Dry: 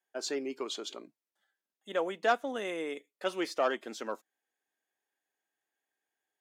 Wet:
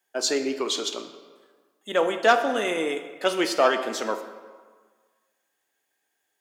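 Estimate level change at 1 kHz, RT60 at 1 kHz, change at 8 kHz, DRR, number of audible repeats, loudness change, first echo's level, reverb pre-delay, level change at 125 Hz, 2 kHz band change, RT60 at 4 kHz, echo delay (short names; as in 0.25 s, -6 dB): +9.5 dB, 1.6 s, +13.0 dB, 7.0 dB, none, +10.0 dB, none, 12 ms, n/a, +10.5 dB, 1.0 s, none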